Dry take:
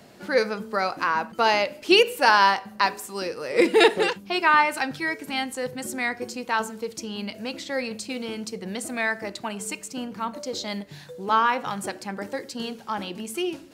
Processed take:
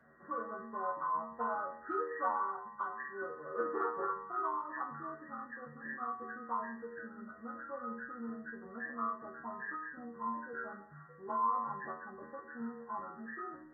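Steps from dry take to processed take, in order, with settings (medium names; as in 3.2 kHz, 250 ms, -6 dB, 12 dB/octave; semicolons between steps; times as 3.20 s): knee-point frequency compression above 1 kHz 4:1; dynamic bell 1.1 kHz, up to +5 dB, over -33 dBFS, Q 2.4; compression, threshold -17 dBFS, peak gain reduction 9 dB; inharmonic resonator 76 Hz, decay 0.54 s, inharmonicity 0.002; de-hum 51.97 Hz, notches 36; trim -2 dB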